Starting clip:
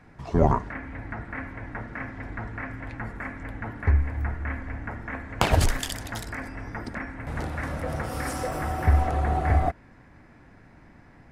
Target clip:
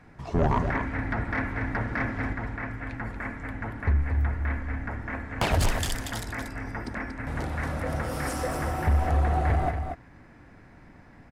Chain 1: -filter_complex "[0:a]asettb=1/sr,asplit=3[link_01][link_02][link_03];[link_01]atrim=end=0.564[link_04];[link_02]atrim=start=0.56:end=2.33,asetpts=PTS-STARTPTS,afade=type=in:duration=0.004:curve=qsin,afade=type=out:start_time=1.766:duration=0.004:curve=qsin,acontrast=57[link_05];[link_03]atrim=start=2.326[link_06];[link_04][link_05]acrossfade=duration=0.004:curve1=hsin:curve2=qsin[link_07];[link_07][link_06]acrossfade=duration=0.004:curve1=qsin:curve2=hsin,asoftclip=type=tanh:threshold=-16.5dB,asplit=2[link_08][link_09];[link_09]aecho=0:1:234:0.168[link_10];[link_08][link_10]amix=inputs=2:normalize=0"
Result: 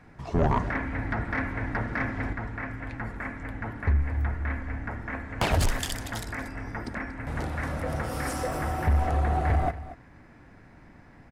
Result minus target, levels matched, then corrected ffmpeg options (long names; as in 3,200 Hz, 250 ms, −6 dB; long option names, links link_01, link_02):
echo-to-direct −8 dB
-filter_complex "[0:a]asettb=1/sr,asplit=3[link_01][link_02][link_03];[link_01]atrim=end=0.564[link_04];[link_02]atrim=start=0.56:end=2.33,asetpts=PTS-STARTPTS,afade=type=in:duration=0.004:curve=qsin,afade=type=out:start_time=1.766:duration=0.004:curve=qsin,acontrast=57[link_05];[link_03]atrim=start=2.326[link_06];[link_04][link_05]acrossfade=duration=0.004:curve1=hsin:curve2=qsin[link_07];[link_07][link_06]acrossfade=duration=0.004:curve1=qsin:curve2=hsin,asoftclip=type=tanh:threshold=-16.5dB,asplit=2[link_08][link_09];[link_09]aecho=0:1:234:0.422[link_10];[link_08][link_10]amix=inputs=2:normalize=0"